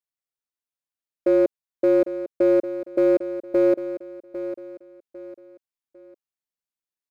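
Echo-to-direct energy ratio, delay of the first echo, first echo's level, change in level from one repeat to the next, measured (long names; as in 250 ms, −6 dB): −11.5 dB, 801 ms, −12.0 dB, −9.5 dB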